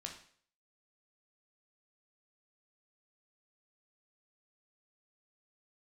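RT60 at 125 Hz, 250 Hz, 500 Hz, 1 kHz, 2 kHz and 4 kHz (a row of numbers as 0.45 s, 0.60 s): 0.50 s, 0.50 s, 0.55 s, 0.50 s, 0.50 s, 0.50 s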